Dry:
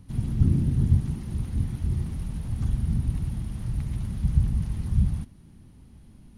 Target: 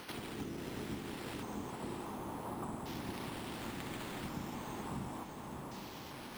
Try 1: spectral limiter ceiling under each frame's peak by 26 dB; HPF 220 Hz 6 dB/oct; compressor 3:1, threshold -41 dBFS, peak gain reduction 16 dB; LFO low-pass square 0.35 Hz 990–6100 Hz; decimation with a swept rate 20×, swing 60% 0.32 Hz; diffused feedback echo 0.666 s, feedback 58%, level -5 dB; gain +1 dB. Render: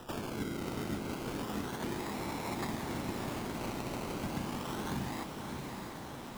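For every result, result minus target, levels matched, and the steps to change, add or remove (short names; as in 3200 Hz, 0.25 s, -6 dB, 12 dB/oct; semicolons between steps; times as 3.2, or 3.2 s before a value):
compressor: peak gain reduction -5 dB; decimation with a swept rate: distortion +6 dB
change: compressor 3:1, threshold -48.5 dBFS, peak gain reduction 21 dB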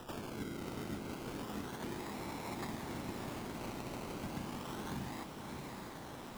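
decimation with a swept rate: distortion +6 dB
change: decimation with a swept rate 6×, swing 60% 0.32 Hz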